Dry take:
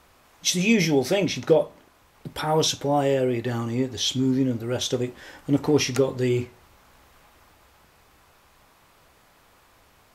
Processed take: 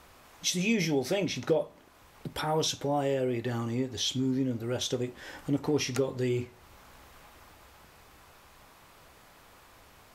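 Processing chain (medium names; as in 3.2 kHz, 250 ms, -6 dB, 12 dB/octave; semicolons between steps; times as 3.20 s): compression 1.5:1, threshold -42 dBFS, peak gain reduction 10.5 dB; trim +1.5 dB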